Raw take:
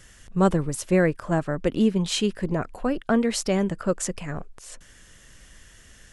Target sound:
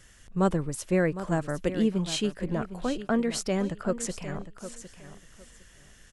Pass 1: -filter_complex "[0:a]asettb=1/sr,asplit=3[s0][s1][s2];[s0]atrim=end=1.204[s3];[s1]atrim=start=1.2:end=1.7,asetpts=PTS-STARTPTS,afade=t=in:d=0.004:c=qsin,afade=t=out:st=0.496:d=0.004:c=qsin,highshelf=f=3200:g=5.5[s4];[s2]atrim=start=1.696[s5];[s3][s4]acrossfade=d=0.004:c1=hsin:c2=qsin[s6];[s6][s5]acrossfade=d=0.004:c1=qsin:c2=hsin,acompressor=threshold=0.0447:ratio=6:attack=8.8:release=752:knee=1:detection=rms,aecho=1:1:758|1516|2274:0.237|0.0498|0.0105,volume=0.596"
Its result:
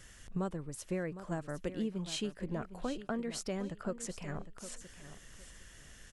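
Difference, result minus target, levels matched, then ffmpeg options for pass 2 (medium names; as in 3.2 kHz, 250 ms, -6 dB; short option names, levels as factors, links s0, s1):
compression: peak gain reduction +14.5 dB
-filter_complex "[0:a]asettb=1/sr,asplit=3[s0][s1][s2];[s0]atrim=end=1.204[s3];[s1]atrim=start=1.2:end=1.7,asetpts=PTS-STARTPTS,afade=t=in:d=0.004:c=qsin,afade=t=out:st=0.496:d=0.004:c=qsin,highshelf=f=3200:g=5.5[s4];[s2]atrim=start=1.696[s5];[s3][s4]acrossfade=d=0.004:c1=hsin:c2=qsin[s6];[s6][s5]acrossfade=d=0.004:c1=qsin:c2=hsin,aecho=1:1:758|1516|2274:0.237|0.0498|0.0105,volume=0.596"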